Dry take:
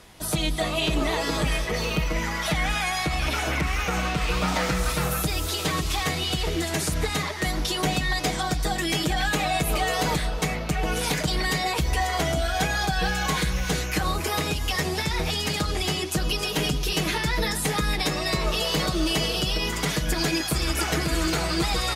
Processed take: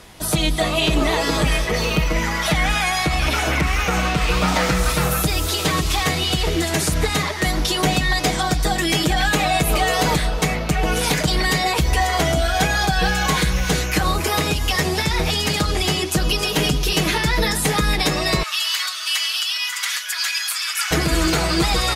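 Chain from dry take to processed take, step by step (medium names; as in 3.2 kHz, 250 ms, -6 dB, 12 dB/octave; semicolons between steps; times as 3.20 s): 18.43–20.91 s: high-pass 1.3 kHz 24 dB/octave; trim +6 dB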